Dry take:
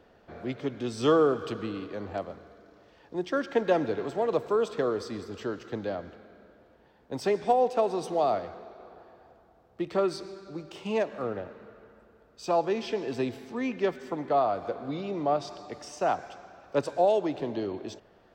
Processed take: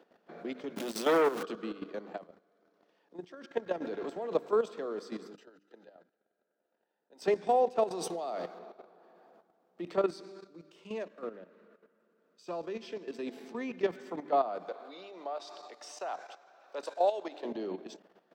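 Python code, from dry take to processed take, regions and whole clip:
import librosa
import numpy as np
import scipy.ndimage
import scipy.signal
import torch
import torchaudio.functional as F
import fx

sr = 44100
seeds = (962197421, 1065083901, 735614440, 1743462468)

y = fx.chain(x, sr, fx.zero_step(step_db=-27.0),
    fx.transformer_sat(knee_hz=990.0), at=(0.76, 1.43))
y = fx.chain(y, sr, fx.highpass(hz=110.0, slope=6),
    fx.level_steps(step_db=12), at=(2.16, 3.82))
y = fx.chain(y, sr, fx.highpass(hz=390.0, slope=6),
    fx.notch_comb(f0_hz=1100.0),
    fx.level_steps(step_db=24), at=(5.33, 7.22))
y = fx.chain(y, sr, fx.highpass(hz=120.0, slope=6),
    fx.over_compress(threshold_db=-28.0, ratio=-0.5),
    fx.high_shelf(hz=5200.0, db=9.0), at=(7.91, 8.59))
y = fx.chain(y, sr, fx.peak_eq(hz=790.0, db=-10.0, octaves=0.34),
    fx.upward_expand(threshold_db=-37.0, expansion=1.5), at=(10.47, 13.27))
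y = fx.chain(y, sr, fx.highpass(hz=550.0, slope=12),
    fx.peak_eq(hz=3900.0, db=5.0, octaves=0.24), at=(14.68, 17.45))
y = scipy.signal.sosfilt(scipy.signal.ellip(4, 1.0, 40, 170.0, 'highpass', fs=sr, output='sos'), y)
y = fx.hum_notches(y, sr, base_hz=50, count=6)
y = fx.level_steps(y, sr, step_db=12)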